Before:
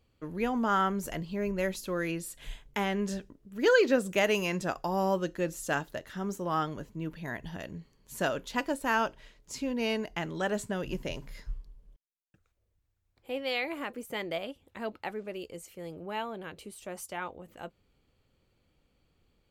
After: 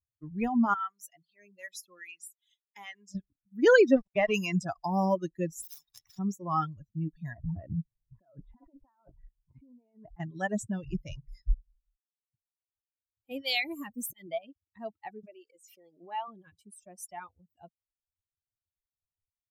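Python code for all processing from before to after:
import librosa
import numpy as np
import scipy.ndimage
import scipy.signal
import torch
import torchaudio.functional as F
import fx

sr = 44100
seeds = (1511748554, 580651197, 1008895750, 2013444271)

y = fx.chain(x, sr, fx.highpass(hz=1200.0, slope=6),
    fx.harmonic_tremolo(hz=2.5, depth_pct=50, crossover_hz=650.0), at=(0.74, 3.15))
y = fx.chain(y, sr, fx.sample_gate(floor_db=-30.5),
    fx.air_absorb(metres=210.0), at=(3.92, 4.34))
y = fx.chain(y, sr, fx.median_filter(points=15),
    fx.peak_eq(hz=6600.0, db=-6.5, octaves=1.2),
    fx.spectral_comp(ratio=10.0), at=(5.62, 6.19))
y = fx.chain(y, sr, fx.over_compress(threshold_db=-41.0, ratio=-1.0),
    fx.bessel_lowpass(hz=1200.0, order=4), at=(7.33, 10.2))
y = fx.chain(y, sr, fx.bass_treble(bass_db=9, treble_db=12),
    fx.auto_swell(attack_ms=187.0), at=(13.31, 14.27))
y = fx.chain(y, sr, fx.highpass(hz=330.0, slope=12),
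    fx.high_shelf(hz=8200.0, db=-7.0),
    fx.pre_swell(db_per_s=54.0), at=(15.23, 16.28))
y = fx.bin_expand(y, sr, power=2.0)
y = fx.low_shelf(y, sr, hz=280.0, db=7.5)
y = fx.dereverb_blind(y, sr, rt60_s=0.83)
y = F.gain(torch.from_numpy(y), 4.0).numpy()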